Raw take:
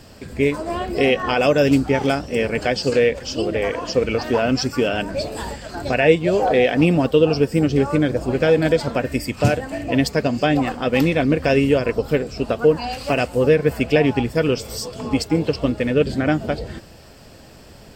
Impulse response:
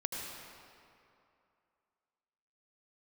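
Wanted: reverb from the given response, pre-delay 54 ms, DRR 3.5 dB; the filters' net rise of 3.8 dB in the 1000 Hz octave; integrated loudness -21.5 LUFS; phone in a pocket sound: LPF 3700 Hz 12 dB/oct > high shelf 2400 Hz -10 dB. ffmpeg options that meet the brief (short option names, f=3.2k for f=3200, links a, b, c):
-filter_complex "[0:a]equalizer=f=1k:t=o:g=7.5,asplit=2[a][b];[1:a]atrim=start_sample=2205,adelay=54[c];[b][c]afir=irnorm=-1:irlink=0,volume=-6.5dB[d];[a][d]amix=inputs=2:normalize=0,lowpass=3.7k,highshelf=f=2.4k:g=-10,volume=-4dB"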